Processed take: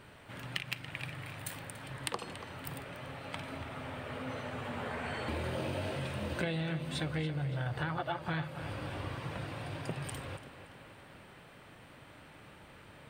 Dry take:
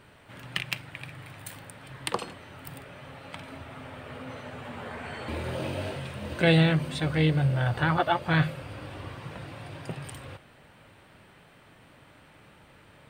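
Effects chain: compression 12:1, threshold -32 dBFS, peak gain reduction 16 dB; on a send: tape echo 285 ms, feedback 61%, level -11 dB, low-pass 4.9 kHz

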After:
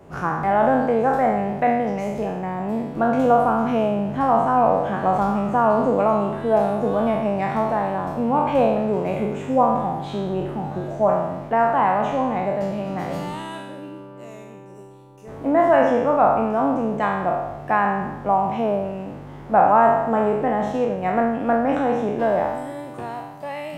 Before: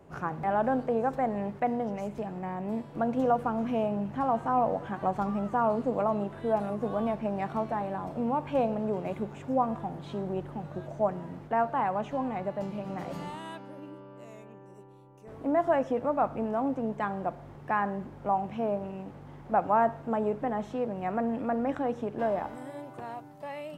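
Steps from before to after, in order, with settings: spectral sustain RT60 1.02 s; 20.66–21.67 s: transient shaper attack +4 dB, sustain -5 dB; trim +7 dB

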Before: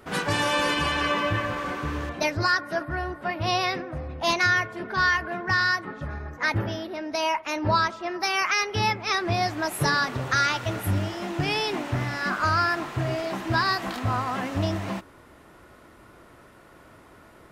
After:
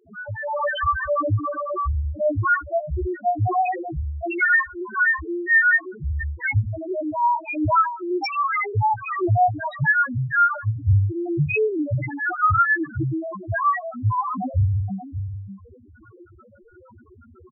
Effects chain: 4.56–5.10 s: elliptic low-pass 2 kHz; on a send: delay 582 ms -12 dB; on the sum: level rider gain up to 13 dB; chorus voices 6, 0.18 Hz, delay 11 ms, depth 2.8 ms; loudest bins only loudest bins 1; trim +5 dB

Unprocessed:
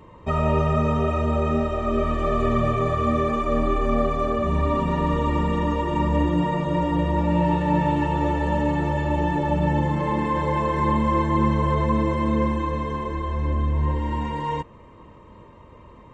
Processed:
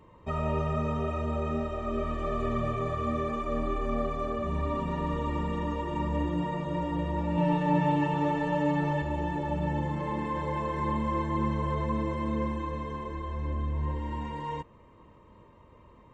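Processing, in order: 7.37–9.02 s: comb 6.8 ms, depth 87%; trim -8.5 dB

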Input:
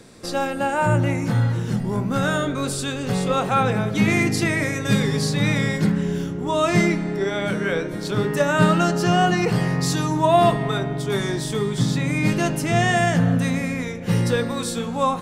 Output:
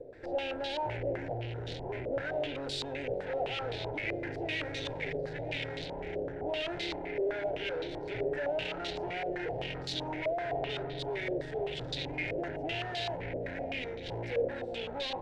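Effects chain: valve stage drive 33 dB, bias 0.65; static phaser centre 480 Hz, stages 4; step-sequenced low-pass 7.8 Hz 550–3800 Hz

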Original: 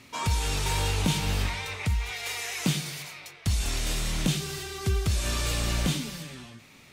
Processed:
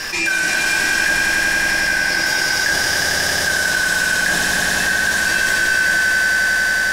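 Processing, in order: four frequency bands reordered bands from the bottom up 3142; 1.13–1.67 s: two resonant band-passes 1.3 kHz, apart 1.3 oct; on a send: echo with a slow build-up 90 ms, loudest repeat 5, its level -5 dB; on the sum: simulated room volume 94 m³, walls mixed, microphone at 0.65 m; level flattener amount 70%

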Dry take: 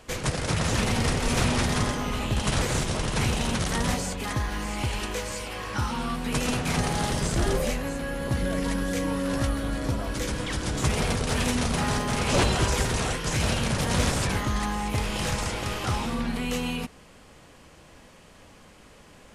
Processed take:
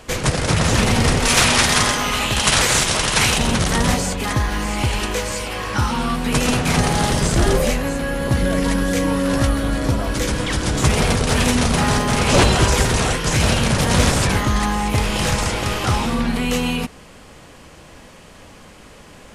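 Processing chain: 1.25–3.38 s: tilt shelf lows -6.5 dB, about 690 Hz; trim +8.5 dB

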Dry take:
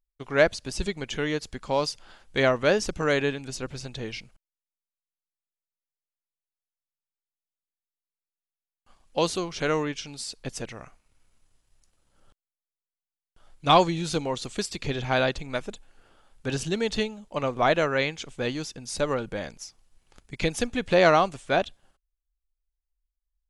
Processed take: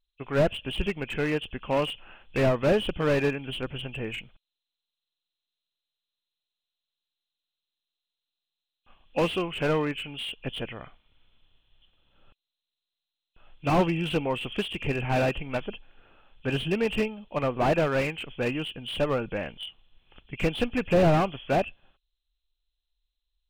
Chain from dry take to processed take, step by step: knee-point frequency compression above 2.4 kHz 4:1; slew-rate limiter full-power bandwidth 63 Hz; trim +1 dB

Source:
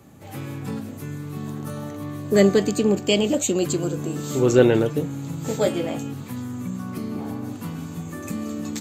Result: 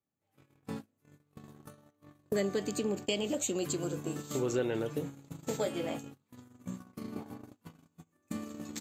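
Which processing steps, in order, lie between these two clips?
gate -27 dBFS, range -39 dB; bass shelf 330 Hz -5.5 dB; compression 3:1, threshold -33 dBFS, peak gain reduction 16 dB

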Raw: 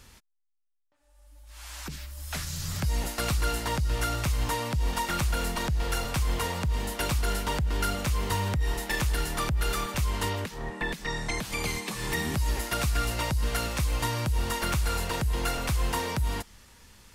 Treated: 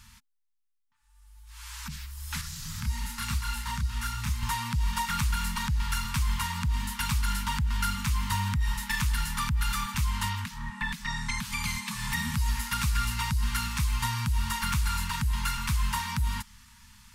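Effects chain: FFT band-reject 250–840 Hz; 2.41–4.43 s: chorus voices 6, 1 Hz, delay 29 ms, depth 3 ms

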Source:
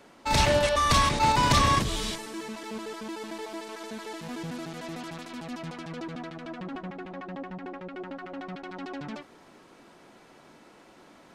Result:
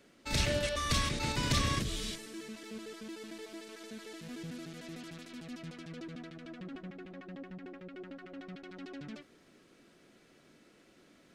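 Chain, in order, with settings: peaking EQ 900 Hz -13.5 dB 0.84 oct; trim -6 dB

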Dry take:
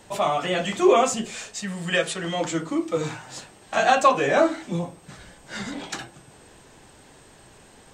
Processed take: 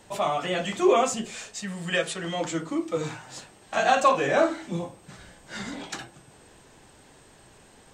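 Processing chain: 3.80–5.83 s: doubling 50 ms -9 dB; trim -3 dB

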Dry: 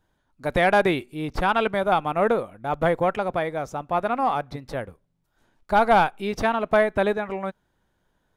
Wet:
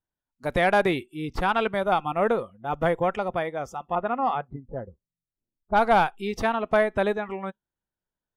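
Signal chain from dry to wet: 3.95–5.95 s: level-controlled noise filter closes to 350 Hz, open at -14.5 dBFS; spectral noise reduction 20 dB; trim -2 dB

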